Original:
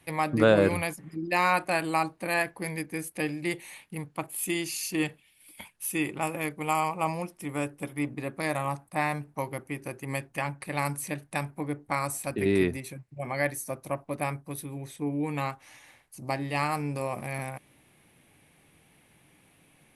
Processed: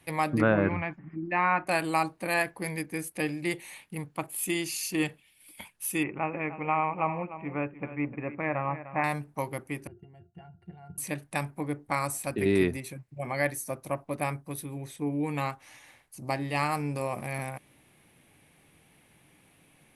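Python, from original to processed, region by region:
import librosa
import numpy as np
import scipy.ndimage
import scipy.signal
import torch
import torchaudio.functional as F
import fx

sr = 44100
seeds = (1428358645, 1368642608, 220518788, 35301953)

y = fx.chain(x, sr, fx.lowpass(hz=2300.0, slope=24),
    fx.peak_eq(hz=480.0, db=-8.5, octaves=0.56), at=(0.41, 1.67))
y = fx.chain(y, sr, fx.ellip_lowpass(hz=2500.0, order=4, stop_db=50),
    fx.echo_single(ms=301, db=-13.0), at=(6.03, 9.04))
y = fx.chain(y, sr, fx.peak_eq(hz=97.0, db=13.5, octaves=2.0),
    fx.level_steps(step_db=11),
    fx.octave_resonator(note='F', decay_s=0.12), at=(9.87, 10.98))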